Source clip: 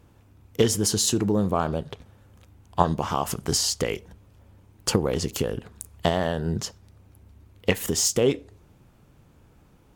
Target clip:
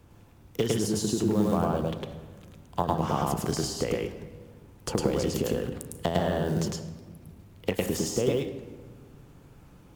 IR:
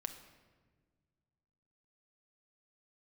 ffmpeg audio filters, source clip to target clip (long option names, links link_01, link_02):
-filter_complex "[0:a]acrusher=bits=7:mode=log:mix=0:aa=0.000001,acrossover=split=170|930[link_01][link_02][link_03];[link_01]acompressor=threshold=-36dB:ratio=4[link_04];[link_02]acompressor=threshold=-26dB:ratio=4[link_05];[link_03]acompressor=threshold=-38dB:ratio=4[link_06];[link_04][link_05][link_06]amix=inputs=3:normalize=0,asplit=2[link_07][link_08];[1:a]atrim=start_sample=2205,adelay=105[link_09];[link_08][link_09]afir=irnorm=-1:irlink=0,volume=2dB[link_10];[link_07][link_10]amix=inputs=2:normalize=0"